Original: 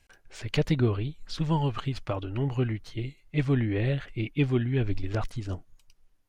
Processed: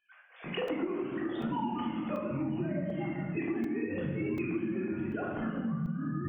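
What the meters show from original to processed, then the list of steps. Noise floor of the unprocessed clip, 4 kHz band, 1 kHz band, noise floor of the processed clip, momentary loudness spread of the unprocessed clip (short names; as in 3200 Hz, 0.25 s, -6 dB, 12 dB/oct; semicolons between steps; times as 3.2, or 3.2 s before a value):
-64 dBFS, -8.5 dB, -0.5 dB, -56 dBFS, 11 LU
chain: sine-wave speech; echoes that change speed 0.363 s, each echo -7 st, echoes 2, each echo -6 dB; shoebox room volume 850 m³, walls mixed, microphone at 3.4 m; compressor, threshold -23 dBFS, peak gain reduction 13 dB; crackling interface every 0.74 s, samples 128, zero, from 0.68; gain -7.5 dB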